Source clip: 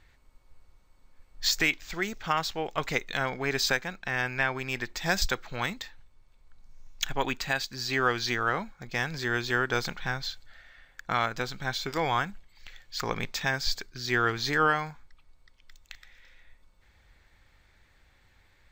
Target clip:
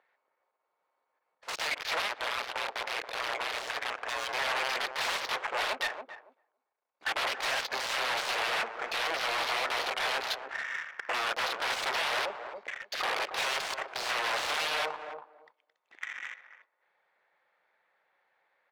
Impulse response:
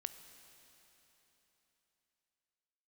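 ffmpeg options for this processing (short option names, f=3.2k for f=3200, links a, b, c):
-filter_complex "[0:a]alimiter=limit=-20.5dB:level=0:latency=1:release=22,aeval=exprs='0.0944*sin(PI/2*10*val(0)/0.0944)':c=same,afwtdn=0.0282,acompressor=threshold=-29dB:ratio=2,asettb=1/sr,asplit=3[a][b][c];[a]atrim=end=2.084[d];[b]atrim=start=2.08:end=4.33,asetpts=PTS-STARTPTS,afade=t=in:d=0.004:c=qsin,afade=t=out:st=2.246:d=0.004:c=qsin,aeval=exprs='val(0)*sin(2*PI*60*n/s)':c=same[e];[c]atrim=start=4.326[f];[d][e]acrossfade=d=0.004:c1=hsin:c2=qsin[g];[g][f]acrossfade=d=0.004:c1=qsin:c2=hsin,highpass=f=520:w=0.5412,highpass=f=520:w=1.3066,asplit=2[h][i];[i]adelay=280,lowpass=f=1k:p=1,volume=-5dB,asplit=2[j][k];[k]adelay=280,lowpass=f=1k:p=1,volume=0.21,asplit=2[l][m];[m]adelay=280,lowpass=f=1k:p=1,volume=0.21[n];[h][j][l][n]amix=inputs=4:normalize=0,adynamicsmooth=sensitivity=4:basefreq=1.7k,agate=range=-9dB:threshold=-59dB:ratio=16:detection=peak"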